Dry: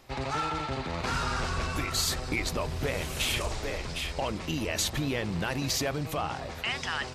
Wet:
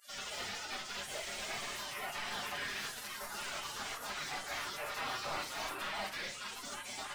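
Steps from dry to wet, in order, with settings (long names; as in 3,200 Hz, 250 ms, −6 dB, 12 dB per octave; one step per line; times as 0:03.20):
sub-octave generator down 1 octave, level −3 dB
healed spectral selection 0:02.65–0:03.17, 340–1,900 Hz both
reverb reduction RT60 0.55 s
gate on every frequency bin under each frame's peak −30 dB weak
high-shelf EQ 2,100 Hz −9 dB
in parallel at −8 dB: bit reduction 5 bits
on the sum: mid-hump overdrive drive 34 dB, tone 2,400 Hz, clips at −35.5 dBFS
phase-vocoder pitch shift with formants kept +4 semitones
rectangular room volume 330 cubic metres, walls furnished, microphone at 1.3 metres
level +5 dB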